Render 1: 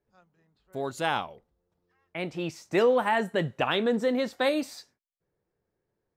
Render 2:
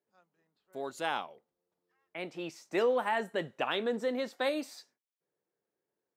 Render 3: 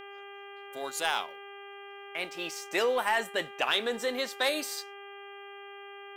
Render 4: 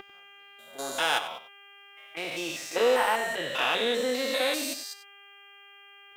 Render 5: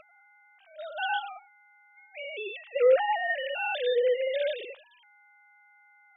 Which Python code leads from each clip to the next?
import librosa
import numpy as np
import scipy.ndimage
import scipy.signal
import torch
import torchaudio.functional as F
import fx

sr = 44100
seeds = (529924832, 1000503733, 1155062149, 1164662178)

y1 = scipy.signal.sosfilt(scipy.signal.butter(2, 250.0, 'highpass', fs=sr, output='sos'), x)
y1 = y1 * librosa.db_to_amplitude(-5.5)
y2 = fx.tilt_eq(y1, sr, slope=3.5)
y2 = fx.leveller(y2, sr, passes=1)
y2 = fx.dmg_buzz(y2, sr, base_hz=400.0, harmonics=8, level_db=-46.0, tilt_db=-3, odd_only=False)
y3 = fx.spec_steps(y2, sr, hold_ms=200)
y3 = fx.notch_comb(y3, sr, f0_hz=200.0)
y3 = y3 + 10.0 ** (-13.5 / 20.0) * np.pad(y3, (int(95 * sr / 1000.0), 0))[:len(y3)]
y3 = y3 * librosa.db_to_amplitude(8.5)
y4 = fx.sine_speech(y3, sr)